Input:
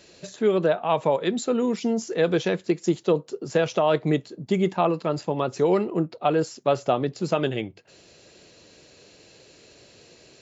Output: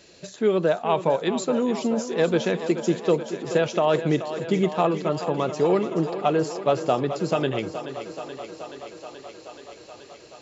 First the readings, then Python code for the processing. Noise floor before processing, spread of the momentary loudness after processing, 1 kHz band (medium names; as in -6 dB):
-54 dBFS, 18 LU, +0.5 dB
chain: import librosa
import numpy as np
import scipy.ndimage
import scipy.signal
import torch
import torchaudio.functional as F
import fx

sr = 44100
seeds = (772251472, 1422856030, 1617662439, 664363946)

y = fx.echo_thinned(x, sr, ms=428, feedback_pct=79, hz=170.0, wet_db=-11.0)